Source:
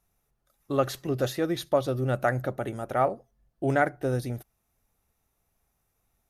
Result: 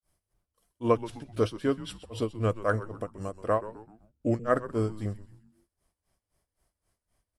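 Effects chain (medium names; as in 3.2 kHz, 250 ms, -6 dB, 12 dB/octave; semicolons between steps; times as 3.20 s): granulator 201 ms, grains 4.5 per s, spray 25 ms, pitch spread up and down by 0 st; frequency-shifting echo 109 ms, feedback 43%, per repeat -130 Hz, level -15 dB; wide varispeed 0.852×; trim +1.5 dB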